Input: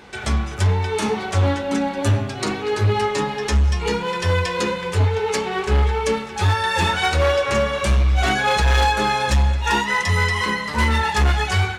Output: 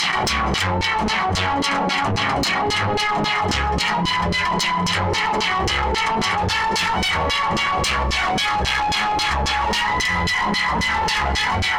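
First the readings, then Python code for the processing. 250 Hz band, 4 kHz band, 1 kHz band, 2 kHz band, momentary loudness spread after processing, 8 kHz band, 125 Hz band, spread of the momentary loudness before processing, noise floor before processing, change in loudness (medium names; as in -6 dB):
0.0 dB, +5.5 dB, +3.5 dB, +3.0 dB, 1 LU, +2.0 dB, -7.0 dB, 5 LU, -29 dBFS, +0.5 dB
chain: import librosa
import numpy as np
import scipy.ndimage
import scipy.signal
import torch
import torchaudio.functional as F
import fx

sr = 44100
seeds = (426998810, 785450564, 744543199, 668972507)

p1 = fx.lower_of_two(x, sr, delay_ms=0.97)
p2 = fx.peak_eq(p1, sr, hz=170.0, db=12.5, octaves=0.28)
p3 = p2 + fx.echo_alternate(p2, sr, ms=688, hz=1600.0, feedback_pct=79, wet_db=-7.0, dry=0)
p4 = fx.filter_lfo_bandpass(p3, sr, shape='saw_down', hz=3.7, low_hz=350.0, high_hz=5400.0, q=1.5)
p5 = fx.notch(p4, sr, hz=3600.0, q=16.0)
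p6 = fx.rider(p5, sr, range_db=10, speed_s=0.5)
p7 = p5 + (p6 * librosa.db_to_amplitude(-2.5))
p8 = 10.0 ** (-19.5 / 20.0) * np.tanh(p7 / 10.0 ** (-19.5 / 20.0))
p9 = fx.low_shelf(p8, sr, hz=90.0, db=10.5)
y = fx.env_flatten(p9, sr, amount_pct=100)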